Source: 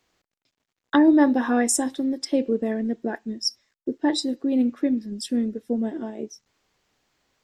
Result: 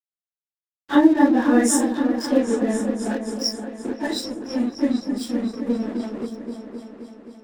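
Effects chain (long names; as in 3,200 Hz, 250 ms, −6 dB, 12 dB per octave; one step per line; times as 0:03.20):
random phases in long frames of 100 ms
0:04.07–0:04.74: notch comb filter 280 Hz
dead-zone distortion −38.5 dBFS
echo whose low-pass opens from repeat to repeat 262 ms, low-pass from 400 Hz, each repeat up 2 octaves, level −6 dB
level +2 dB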